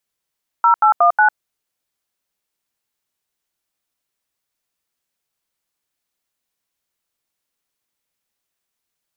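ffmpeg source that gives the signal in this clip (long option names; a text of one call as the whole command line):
ffmpeg -f lavfi -i "aevalsrc='0.266*clip(min(mod(t,0.182),0.101-mod(t,0.182))/0.002,0,1)*(eq(floor(t/0.182),0)*(sin(2*PI*941*mod(t,0.182))+sin(2*PI*1336*mod(t,0.182)))+eq(floor(t/0.182),1)*(sin(2*PI*852*mod(t,0.182))+sin(2*PI*1336*mod(t,0.182)))+eq(floor(t/0.182),2)*(sin(2*PI*697*mod(t,0.182))+sin(2*PI*1209*mod(t,0.182)))+eq(floor(t/0.182),3)*(sin(2*PI*852*mod(t,0.182))+sin(2*PI*1477*mod(t,0.182))))':duration=0.728:sample_rate=44100" out.wav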